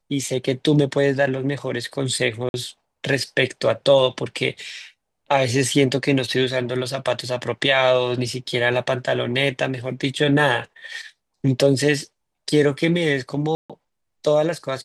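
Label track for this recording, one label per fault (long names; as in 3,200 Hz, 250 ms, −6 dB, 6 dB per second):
2.490000	2.540000	drop-out 51 ms
13.550000	13.700000	drop-out 146 ms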